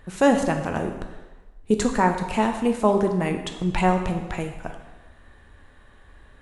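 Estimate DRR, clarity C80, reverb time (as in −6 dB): 4.5 dB, 9.0 dB, 1.2 s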